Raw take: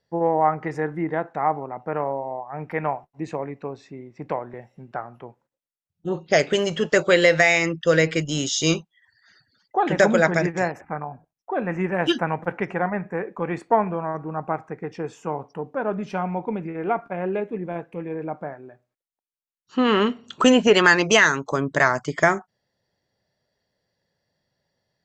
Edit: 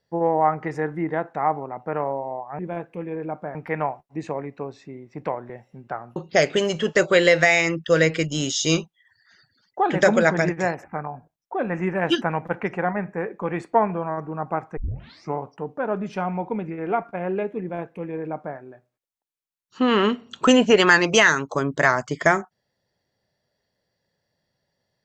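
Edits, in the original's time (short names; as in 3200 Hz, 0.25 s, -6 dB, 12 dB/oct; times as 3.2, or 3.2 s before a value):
5.2–6.13 cut
14.74 tape start 0.60 s
17.58–18.54 copy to 2.59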